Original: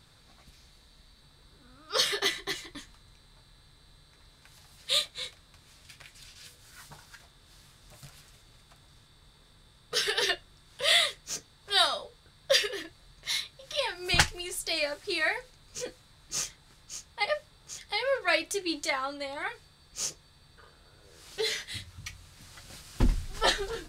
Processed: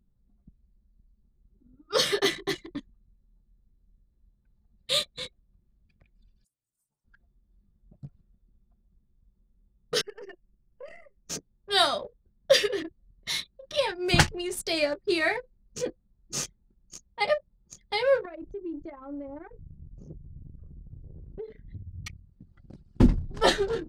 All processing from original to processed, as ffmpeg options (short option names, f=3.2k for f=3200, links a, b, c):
-filter_complex "[0:a]asettb=1/sr,asplit=3[a][b][c];[a]atrim=end=6.444[d];[b]atrim=start=6.44:end=7.05,asetpts=PTS-STARTPTS,afade=t=in:d=0.004:c=qsin,afade=t=out:st=0.606:d=0.004:c=qsin,asuperstop=centerf=2400:order=4:qfactor=0.6,aderivative,acontrast=55[e];[c]atrim=start=7.046[f];[d][e]acrossfade=d=0.004:c1=hsin:c2=qsin[g];[g][f]acrossfade=d=0.004:c1=qsin:c2=hsin,asettb=1/sr,asplit=3[h][i][j];[h]atrim=end=10.014[k];[i]atrim=start=10.01:end=11.29,asetpts=PTS-STARTPTS,afade=t=in:d=0.004:c=qsin,afade=t=out:st=1.276:d=0.004:c=qsin,aeval=exprs='if(lt(val(0),0),0.447*val(0),val(0))':c=same,acompressor=threshold=-49dB:ratio=2:attack=3.2:release=140:knee=1:detection=peak,asuperstop=centerf=3700:order=8:qfactor=2.2[l];[j]atrim=start=11.286[m];[k][l]acrossfade=d=0.004:c1=hsin:c2=qsin[n];[n][m]acrossfade=d=0.004:c1=qsin:c2=hsin,asettb=1/sr,asplit=3[o][p][q];[o]atrim=end=18.254[r];[p]atrim=start=18.25:end=22.04,asetpts=PTS-STARTPTS,afade=t=in:d=0.004:c=qsin,afade=t=out:st=3.786:d=0.004:c=qsin,aemphasis=mode=reproduction:type=riaa,acompressor=threshold=-43dB:ratio=6:attack=3.2:release=140:knee=1:detection=peak[s];[q]atrim=start=22.036[t];[r][s]acrossfade=d=0.004:c1=hsin:c2=qsin[u];[u][t]acrossfade=d=0.004:c1=qsin:c2=hsin,equalizer=f=230:w=0.44:g=11.5,anlmdn=1.58"